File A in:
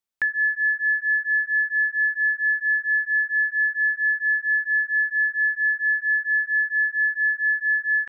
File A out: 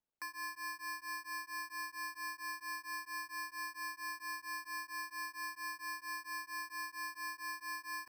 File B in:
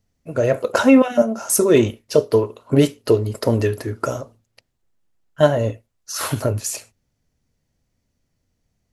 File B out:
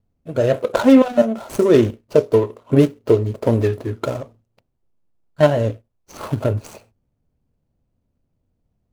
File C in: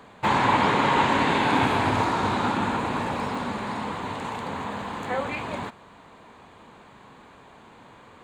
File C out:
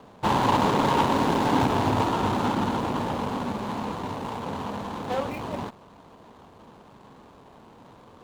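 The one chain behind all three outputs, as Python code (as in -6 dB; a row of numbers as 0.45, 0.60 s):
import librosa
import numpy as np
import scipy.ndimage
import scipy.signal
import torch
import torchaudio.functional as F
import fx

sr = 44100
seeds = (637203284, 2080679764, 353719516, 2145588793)

y = scipy.signal.medfilt(x, 25)
y = y * librosa.db_to_amplitude(1.5)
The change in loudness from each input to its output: -21.5, +1.0, -1.0 LU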